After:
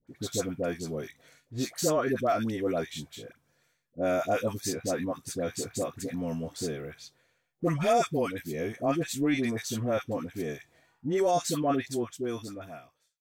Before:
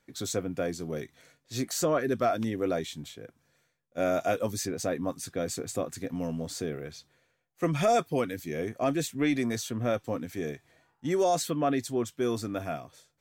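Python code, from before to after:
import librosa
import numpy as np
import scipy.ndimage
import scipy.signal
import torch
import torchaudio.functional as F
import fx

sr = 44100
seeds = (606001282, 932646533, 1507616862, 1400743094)

y = fx.fade_out_tail(x, sr, length_s=1.5)
y = fx.dispersion(y, sr, late='highs', ms=74.0, hz=890.0)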